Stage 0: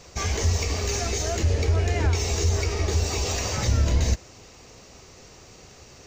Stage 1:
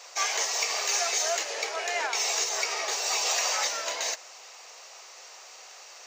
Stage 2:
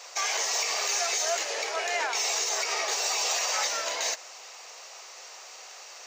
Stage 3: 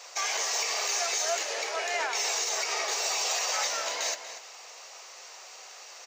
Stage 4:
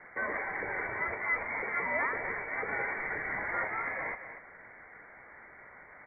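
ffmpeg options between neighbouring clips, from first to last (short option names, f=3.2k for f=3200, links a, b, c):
-af "highpass=f=650:w=0.5412,highpass=f=650:w=1.3066,volume=3.5dB"
-af "alimiter=limit=-20dB:level=0:latency=1:release=57,volume=2dB"
-filter_complex "[0:a]asplit=2[a][b];[b]adelay=239.1,volume=-10dB,highshelf=f=4k:g=-5.38[c];[a][c]amix=inputs=2:normalize=0,volume=-1.5dB"
-af "lowpass=f=2.3k:t=q:w=0.5098,lowpass=f=2.3k:t=q:w=0.6013,lowpass=f=2.3k:t=q:w=0.9,lowpass=f=2.3k:t=q:w=2.563,afreqshift=-2700"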